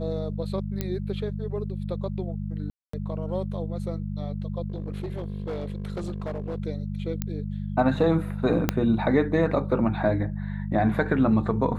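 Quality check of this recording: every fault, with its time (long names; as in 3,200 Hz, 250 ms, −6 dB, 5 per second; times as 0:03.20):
mains hum 50 Hz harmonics 4 −31 dBFS
0:00.81: click −14 dBFS
0:02.70–0:02.93: drop-out 234 ms
0:04.68–0:06.58: clipping −27 dBFS
0:07.22: click −14 dBFS
0:08.69: click −6 dBFS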